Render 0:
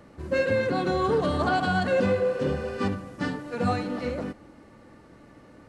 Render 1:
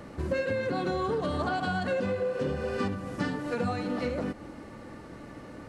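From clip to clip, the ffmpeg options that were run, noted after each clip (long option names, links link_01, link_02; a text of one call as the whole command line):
ffmpeg -i in.wav -af "acompressor=threshold=-34dB:ratio=6,volume=6.5dB" out.wav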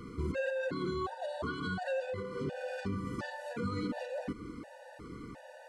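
ffmpeg -i in.wav -af "alimiter=level_in=2dB:limit=-24dB:level=0:latency=1:release=22,volume=-2dB,afftfilt=real='re*gt(sin(2*PI*1.4*pts/sr)*(1-2*mod(floor(b*sr/1024/490),2)),0)':imag='im*gt(sin(2*PI*1.4*pts/sr)*(1-2*mod(floor(b*sr/1024/490),2)),0)':win_size=1024:overlap=0.75" out.wav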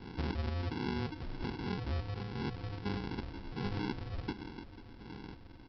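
ffmpeg -i in.wav -af "aresample=11025,acrusher=samples=18:mix=1:aa=0.000001,aresample=44100,aecho=1:1:492:0.15,volume=-1dB" out.wav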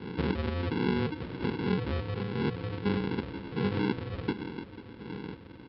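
ffmpeg -i in.wav -af "highpass=100,equalizer=frequency=180:width_type=q:width=4:gain=4,equalizer=frequency=460:width_type=q:width=4:gain=7,equalizer=frequency=720:width_type=q:width=4:gain=-7,lowpass=frequency=4000:width=0.5412,lowpass=frequency=4000:width=1.3066,volume=7dB" out.wav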